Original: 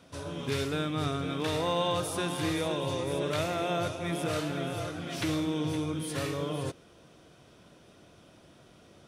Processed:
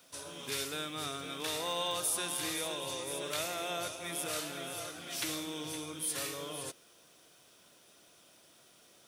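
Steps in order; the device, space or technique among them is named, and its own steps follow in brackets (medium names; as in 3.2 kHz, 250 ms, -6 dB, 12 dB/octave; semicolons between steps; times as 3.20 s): turntable without a phono preamp (RIAA curve recording; white noise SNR 33 dB); trim -6 dB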